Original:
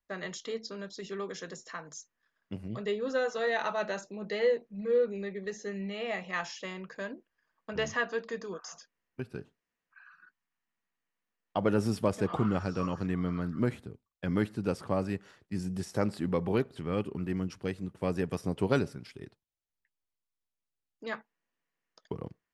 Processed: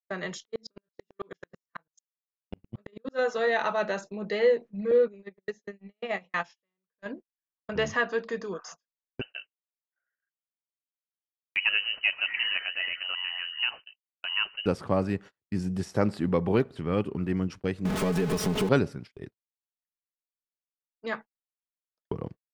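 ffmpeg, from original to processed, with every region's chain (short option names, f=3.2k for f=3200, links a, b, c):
-filter_complex "[0:a]asettb=1/sr,asplit=3[a][b][c];[a]atrim=end=0.454[d];[b]atrim=start=0.45:end=3.19,asetpts=PTS-STARTPTS,afade=t=in:d=0.004:c=qsin,afade=t=out:st=2.736:d=0.004:c=qsin,asplit=2[e][f];[f]adelay=18,volume=-9dB[g];[e][g]amix=inputs=2:normalize=0,atrim=end_sample=120834,aeval=exprs='val(0)*pow(10,-39*if(lt(mod(-9.1*n/s,1),2*abs(-9.1)/1000),1-mod(-9.1*n/s,1)/(2*abs(-9.1)/1000),(mod(-9.1*n/s,1)-2*abs(-9.1)/1000)/(1-2*abs(-9.1)/1000))/20)':c=same[h];[c]atrim=start=3.186[i];[d][h]acrossfade=d=0.004:c1=hsin:c2=qsin[j];[j][i]acrossfade=d=0.004:c1=qsin:c2=hsin,asettb=1/sr,asplit=3[k][l][m];[k]atrim=end=4.914[n];[l]atrim=start=4.91:end=7.06,asetpts=PTS-STARTPTS,afade=t=in:d=0.004:c=qsin,afade=t=out:st=2.146:d=0.004:c=qsin,lowpass=9.9k,agate=range=-16dB:threshold=-35dB:ratio=16:release=100:detection=peak[o];[m]atrim=start=7.056[p];[n][o]acrossfade=d=0.004:c1=hsin:c2=qsin[q];[q][p]acrossfade=d=0.004:c1=qsin:c2=hsin,asettb=1/sr,asplit=3[r][s][t];[r]atrim=end=9.214[u];[s]atrim=start=9.21:end=14.66,asetpts=PTS-STARTPTS,afade=t=in:d=0.004:c=qsin,afade=t=out:st=5.446:d=0.004:c=qsin,equalizer=f=120:t=o:w=1.9:g=-9.5,lowpass=f=2.6k:t=q:w=0.5098,lowpass=f=2.6k:t=q:w=0.6013,lowpass=f=2.6k:t=q:w=0.9,lowpass=f=2.6k:t=q:w=2.563,afreqshift=-3100[v];[t]atrim=start=14.656[w];[u][v]acrossfade=d=0.004:c1=hsin:c2=qsin[x];[x][w]acrossfade=d=0.004:c1=qsin:c2=hsin,asettb=1/sr,asplit=3[y][z][aa];[y]atrim=end=17.854[ab];[z]atrim=start=17.85:end=18.69,asetpts=PTS-STARTPTS,afade=t=in:d=0.004:c=qsin,afade=t=out:st=0.836:d=0.004:c=qsin,aeval=exprs='val(0)+0.5*0.0335*sgn(val(0))':c=same,aecho=1:1:4.7:0.84,atrim=end_sample=37044,acompressor=threshold=-27dB:ratio=5:attack=3.2:release=140:knee=1:detection=peak[ac];[aa]atrim=start=18.686[ad];[ab][ac]acrossfade=d=0.004:c1=hsin:c2=qsin[ae];[ae][ad]acrossfade=d=0.004:c1=qsin:c2=hsin,agate=range=-35dB:threshold=-45dB:ratio=16:detection=peak,highshelf=f=6.5k:g=-9,volume=4.5dB"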